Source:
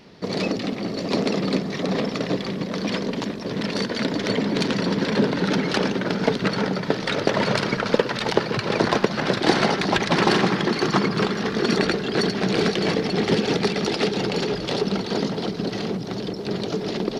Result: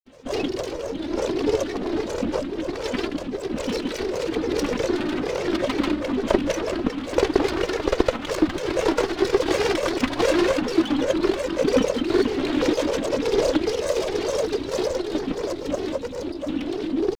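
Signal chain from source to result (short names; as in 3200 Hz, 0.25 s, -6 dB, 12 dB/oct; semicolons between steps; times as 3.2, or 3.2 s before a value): minimum comb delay 2.7 ms; bell 370 Hz +11.5 dB 0.35 oct; grains, pitch spread up and down by 7 st; gain -2.5 dB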